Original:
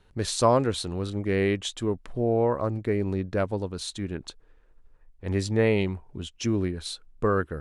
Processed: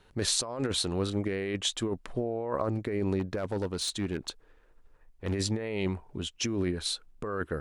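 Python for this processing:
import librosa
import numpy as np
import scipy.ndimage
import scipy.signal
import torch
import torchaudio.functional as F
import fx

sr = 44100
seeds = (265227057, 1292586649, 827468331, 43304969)

y = fx.low_shelf(x, sr, hz=180.0, db=-7.0)
y = fx.over_compress(y, sr, threshold_db=-30.0, ratio=-1.0)
y = fx.clip_hard(y, sr, threshold_db=-25.5, at=(3.19, 5.33))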